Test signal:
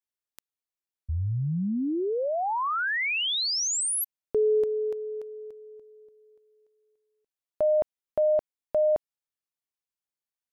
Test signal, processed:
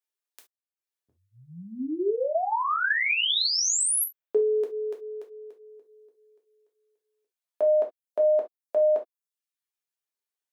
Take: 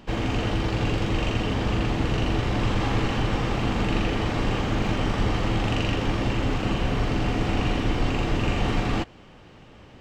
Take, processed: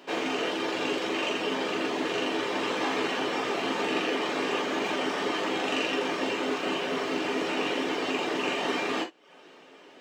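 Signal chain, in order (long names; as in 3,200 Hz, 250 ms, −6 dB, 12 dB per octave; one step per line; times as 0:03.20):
Chebyshev high-pass filter 320 Hz, order 3
reverb reduction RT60 0.59 s
reverb whose tail is shaped and stops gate 90 ms falling, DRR 1 dB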